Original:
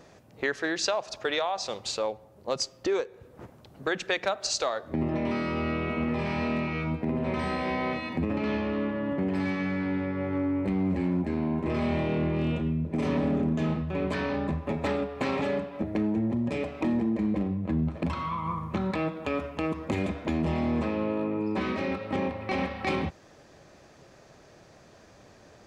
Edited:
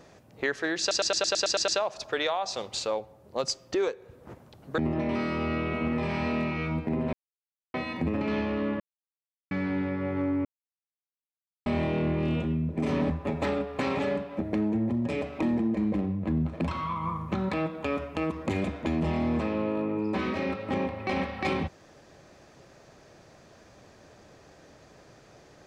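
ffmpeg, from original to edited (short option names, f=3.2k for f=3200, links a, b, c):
-filter_complex "[0:a]asplit=17[a][b][c][d][e][f][g][h][i][j][k][l][m][n][o][p][q];[a]atrim=end=0.912[r];[b]atrim=start=0.798:end=0.912[s];[c]atrim=start=0.798:end=0.912[t];[d]atrim=start=0.798:end=0.912[u];[e]atrim=start=0.798:end=0.912[v];[f]atrim=start=0.798:end=0.912[w];[g]atrim=start=0.798:end=0.912[x];[h]atrim=start=0.798:end=0.912[y];[i]atrim=start=0.798:end=3.902[z];[j]atrim=start=4.938:end=7.29,asetpts=PTS-STARTPTS,afade=t=out:st=2.348:d=0.004:c=hsin[aa];[k]atrim=start=7.29:end=7.9,asetpts=PTS-STARTPTS,volume=0[ab];[l]atrim=start=7.9:end=8.96,asetpts=PTS-STARTPTS,afade=t=in:d=0.004:c=hsin,afade=t=out:st=1.056:d=0.004:c=hsin[ac];[m]atrim=start=8.96:end=9.67,asetpts=PTS-STARTPTS,volume=0[ad];[n]atrim=start=9.67:end=10.61,asetpts=PTS-STARTPTS,afade=t=in:d=0.004:c=hsin,afade=t=out:st=0.936:d=0.004:c=hsin[ae];[o]atrim=start=10.61:end=11.82,asetpts=PTS-STARTPTS,volume=0[af];[p]atrim=start=11.82:end=13.262,asetpts=PTS-STARTPTS,afade=t=in:d=0.004:c=hsin[ag];[q]atrim=start=14.518[ah];[r][s]acrossfade=d=0.004:c1=hsin:c2=hsin[ai];[ai][t]acrossfade=d=0.004:c1=hsin:c2=hsin[aj];[aj][u]acrossfade=d=0.004:c1=hsin:c2=hsin[ak];[ak][v]acrossfade=d=0.004:c1=hsin:c2=hsin[al];[al][w]acrossfade=d=0.004:c1=hsin:c2=hsin[am];[am][x]acrossfade=d=0.004:c1=hsin:c2=hsin[an];[an][y]acrossfade=d=0.004:c1=hsin:c2=hsin[ao];[ao][z]acrossfade=d=0.004:c1=hsin:c2=hsin[ap];[aa][ab][ac][ad][ae][af][ag]concat=n=7:v=0:a=1[aq];[ap][aq]acrossfade=d=0.004:c1=hsin:c2=hsin[ar];[ar][ah]acrossfade=d=0.004:c1=hsin:c2=hsin"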